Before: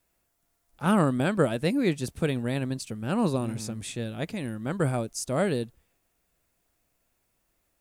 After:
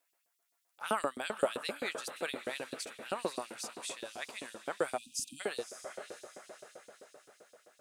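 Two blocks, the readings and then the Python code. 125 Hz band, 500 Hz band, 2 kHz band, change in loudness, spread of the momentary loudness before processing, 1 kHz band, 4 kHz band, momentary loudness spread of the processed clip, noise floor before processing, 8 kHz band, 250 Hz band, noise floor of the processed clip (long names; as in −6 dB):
−29.5 dB, −8.0 dB, −4.5 dB, −10.5 dB, 9 LU, −6.0 dB, −2.5 dB, 18 LU, −74 dBFS, −3.0 dB, −19.5 dB, −80 dBFS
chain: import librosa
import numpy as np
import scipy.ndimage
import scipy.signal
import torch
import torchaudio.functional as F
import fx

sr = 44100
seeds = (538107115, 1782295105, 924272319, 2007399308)

y = fx.echo_diffused(x, sr, ms=550, feedback_pct=53, wet_db=-10.5)
y = fx.filter_lfo_highpass(y, sr, shape='saw_up', hz=7.7, low_hz=380.0, high_hz=5200.0, q=1.4)
y = fx.spec_erase(y, sr, start_s=4.98, length_s=0.43, low_hz=310.0, high_hz=2400.0)
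y = F.gain(torch.from_numpy(y), -4.5).numpy()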